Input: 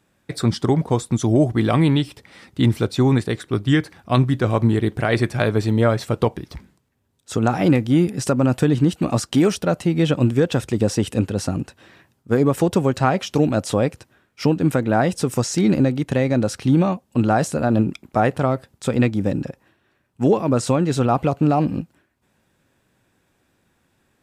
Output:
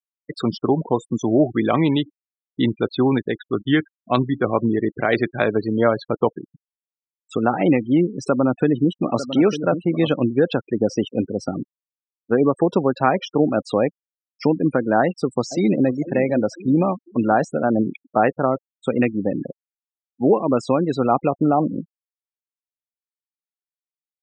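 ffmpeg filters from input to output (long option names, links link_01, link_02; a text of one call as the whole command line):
ffmpeg -i in.wav -filter_complex "[0:a]asettb=1/sr,asplit=3[link_01][link_02][link_03];[link_01]atrim=end=8.294[link_04];[link_02]atrim=start=8.29:end=10.15,asetpts=PTS-STARTPTS,afade=type=in:duration=0.004:curve=qsin,afade=type=out:start_time=1.856:duration=0.004:curve=qsin,aecho=1:1:900:0.299,atrim=end_sample=82026[link_05];[link_03]atrim=start=10.146[link_06];[link_04][link_05]acrossfade=duration=0.004:curve1=hsin:curve2=qsin[link_07];[link_07][link_06]acrossfade=duration=0.004:curve1=qsin:curve2=hsin,asplit=2[link_08][link_09];[link_09]afade=type=in:start_time=15.01:duration=0.01,afade=type=out:start_time=15.91:duration=0.01,aecho=0:1:500|1000|1500|2000|2500:0.251189|0.125594|0.0627972|0.0313986|0.0156993[link_10];[link_08][link_10]amix=inputs=2:normalize=0,highpass=220,afftfilt=real='re*gte(hypot(re,im),0.0562)':imag='im*gte(hypot(re,im),0.0562)':win_size=1024:overlap=0.75,lowpass=4400,volume=1.5dB" out.wav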